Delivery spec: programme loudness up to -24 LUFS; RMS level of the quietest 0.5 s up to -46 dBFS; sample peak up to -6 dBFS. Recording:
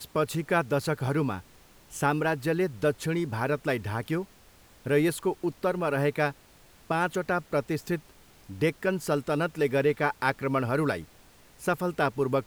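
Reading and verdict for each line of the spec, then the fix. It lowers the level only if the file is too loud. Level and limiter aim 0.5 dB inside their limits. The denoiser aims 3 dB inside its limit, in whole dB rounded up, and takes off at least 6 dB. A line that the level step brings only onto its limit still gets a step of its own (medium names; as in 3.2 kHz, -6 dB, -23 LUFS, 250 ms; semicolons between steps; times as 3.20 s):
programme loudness -28.5 LUFS: pass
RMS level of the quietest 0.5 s -56 dBFS: pass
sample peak -9.5 dBFS: pass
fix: none needed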